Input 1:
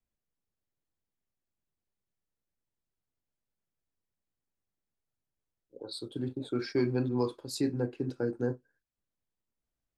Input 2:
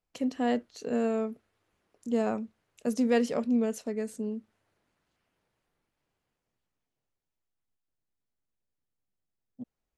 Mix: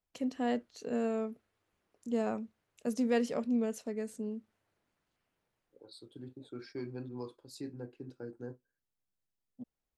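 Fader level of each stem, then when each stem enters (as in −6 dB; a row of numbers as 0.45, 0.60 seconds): −12.5, −4.5 decibels; 0.00, 0.00 seconds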